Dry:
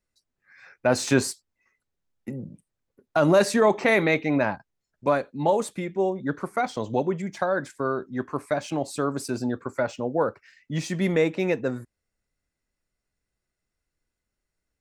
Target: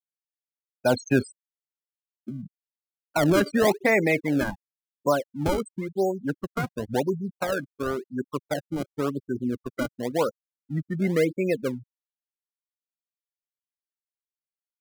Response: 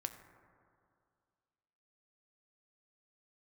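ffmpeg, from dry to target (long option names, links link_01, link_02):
-filter_complex "[0:a]afftfilt=real='re*gte(hypot(re,im),0.1)':imag='im*gte(hypot(re,im),0.1)':win_size=1024:overlap=0.75,acrossover=split=540|1000[link_01][link_02][link_03];[link_02]acrusher=samples=28:mix=1:aa=0.000001:lfo=1:lforange=44.8:lforate=0.94[link_04];[link_01][link_04][link_03]amix=inputs=3:normalize=0"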